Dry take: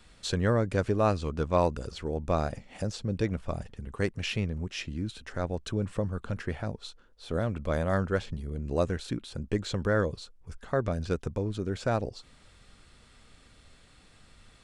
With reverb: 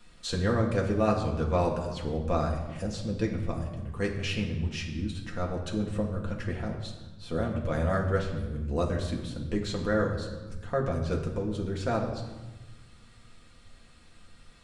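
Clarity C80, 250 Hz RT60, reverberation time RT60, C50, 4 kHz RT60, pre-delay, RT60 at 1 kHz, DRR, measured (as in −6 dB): 8.5 dB, 1.7 s, 1.2 s, 6.5 dB, 0.95 s, 4 ms, 1.2 s, −1.0 dB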